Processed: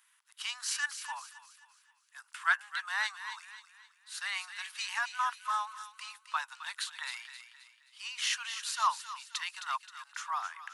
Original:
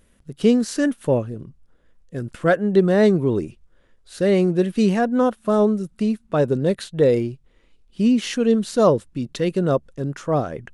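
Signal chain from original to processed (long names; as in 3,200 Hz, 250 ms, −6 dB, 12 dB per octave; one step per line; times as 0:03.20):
Butterworth high-pass 900 Hz 72 dB per octave
delay with a high-pass on its return 264 ms, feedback 40%, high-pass 1,500 Hz, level −9 dB
0:01.14–0:02.26: dynamic equaliser 2,300 Hz, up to −5 dB, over −60 dBFS, Q 1.6
level −2 dB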